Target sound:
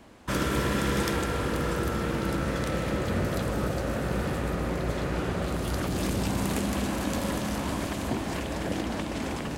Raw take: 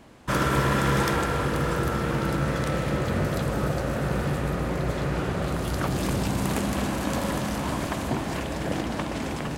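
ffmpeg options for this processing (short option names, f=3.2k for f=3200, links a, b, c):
-filter_complex "[0:a]equalizer=f=140:t=o:w=0.2:g=-9,acrossover=split=560|1900[a][b][c];[b]alimiter=level_in=5dB:limit=-24dB:level=0:latency=1:release=179,volume=-5dB[d];[a][d][c]amix=inputs=3:normalize=0,volume=-1dB"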